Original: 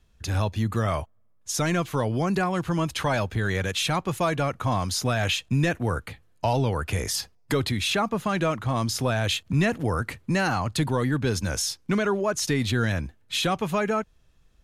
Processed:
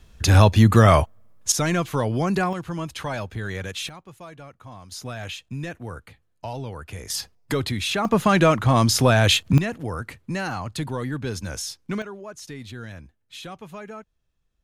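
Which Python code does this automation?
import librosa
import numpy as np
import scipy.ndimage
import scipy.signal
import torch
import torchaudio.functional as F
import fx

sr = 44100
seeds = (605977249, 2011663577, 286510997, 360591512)

y = fx.gain(x, sr, db=fx.steps((0.0, 11.5), (1.52, 2.0), (2.53, -4.5), (3.89, -17.0), (4.92, -9.0), (7.1, 0.0), (8.05, 8.0), (9.58, -4.0), (12.02, -13.0)))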